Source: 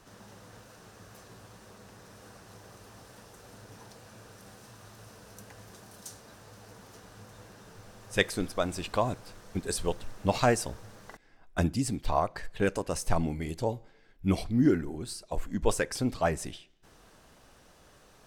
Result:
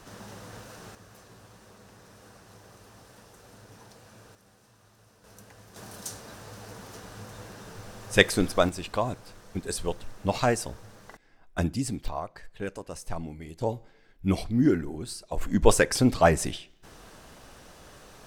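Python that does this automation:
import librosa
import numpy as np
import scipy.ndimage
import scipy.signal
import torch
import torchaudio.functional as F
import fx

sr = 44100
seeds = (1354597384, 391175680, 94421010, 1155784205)

y = fx.gain(x, sr, db=fx.steps((0.0, 7.0), (0.95, -1.0), (4.35, -9.0), (5.24, -2.0), (5.76, 7.0), (8.69, 0.0), (12.08, -7.0), (13.61, 1.5), (15.41, 8.0)))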